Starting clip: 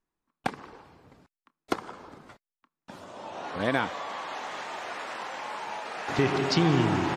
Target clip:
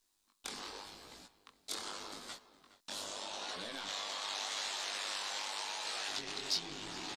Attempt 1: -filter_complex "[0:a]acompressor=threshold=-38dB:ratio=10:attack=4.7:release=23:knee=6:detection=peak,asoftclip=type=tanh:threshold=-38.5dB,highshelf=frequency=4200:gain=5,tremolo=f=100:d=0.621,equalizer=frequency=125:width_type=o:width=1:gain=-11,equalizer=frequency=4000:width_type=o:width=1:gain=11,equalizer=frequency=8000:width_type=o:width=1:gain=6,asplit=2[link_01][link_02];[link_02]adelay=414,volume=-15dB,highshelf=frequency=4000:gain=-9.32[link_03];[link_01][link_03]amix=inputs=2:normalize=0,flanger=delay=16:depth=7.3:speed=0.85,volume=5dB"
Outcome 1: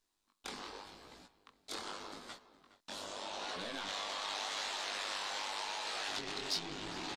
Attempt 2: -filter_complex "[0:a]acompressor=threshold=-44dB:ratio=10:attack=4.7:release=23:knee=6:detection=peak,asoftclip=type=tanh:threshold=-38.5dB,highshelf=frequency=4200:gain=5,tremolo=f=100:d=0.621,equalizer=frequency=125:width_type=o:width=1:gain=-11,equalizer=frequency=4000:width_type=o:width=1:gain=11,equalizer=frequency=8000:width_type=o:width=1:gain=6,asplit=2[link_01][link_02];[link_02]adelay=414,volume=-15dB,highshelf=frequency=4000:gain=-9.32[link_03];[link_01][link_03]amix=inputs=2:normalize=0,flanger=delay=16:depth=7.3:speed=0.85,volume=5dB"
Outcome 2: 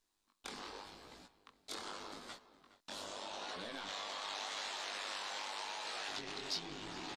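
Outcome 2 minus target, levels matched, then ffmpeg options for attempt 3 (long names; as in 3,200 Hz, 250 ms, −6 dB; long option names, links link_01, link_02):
8,000 Hz band −3.0 dB
-filter_complex "[0:a]acompressor=threshold=-44dB:ratio=10:attack=4.7:release=23:knee=6:detection=peak,asoftclip=type=tanh:threshold=-38.5dB,highshelf=frequency=4200:gain=14.5,tremolo=f=100:d=0.621,equalizer=frequency=125:width_type=o:width=1:gain=-11,equalizer=frequency=4000:width_type=o:width=1:gain=11,equalizer=frequency=8000:width_type=o:width=1:gain=6,asplit=2[link_01][link_02];[link_02]adelay=414,volume=-15dB,highshelf=frequency=4000:gain=-9.32[link_03];[link_01][link_03]amix=inputs=2:normalize=0,flanger=delay=16:depth=7.3:speed=0.85,volume=5dB"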